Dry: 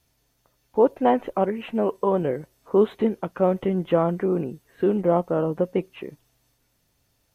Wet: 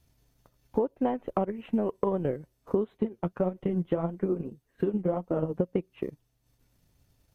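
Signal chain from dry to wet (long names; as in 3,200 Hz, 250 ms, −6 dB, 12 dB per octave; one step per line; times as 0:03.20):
0:02.97–0:05.54: flanger 1.7 Hz, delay 2.9 ms, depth 9 ms, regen +36%
transient designer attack +5 dB, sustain −9 dB
low-shelf EQ 290 Hz +10 dB
downward compressor 12 to 1, threshold −19 dBFS, peak gain reduction 13.5 dB
level −4 dB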